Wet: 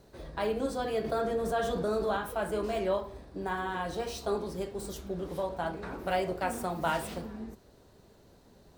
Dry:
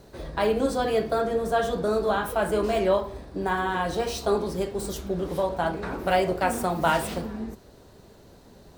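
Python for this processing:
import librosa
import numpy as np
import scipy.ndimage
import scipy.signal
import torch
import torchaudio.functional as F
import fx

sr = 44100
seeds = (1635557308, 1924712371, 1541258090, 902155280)

y = fx.env_flatten(x, sr, amount_pct=50, at=(1.04, 2.17))
y = F.gain(torch.from_numpy(y), -7.5).numpy()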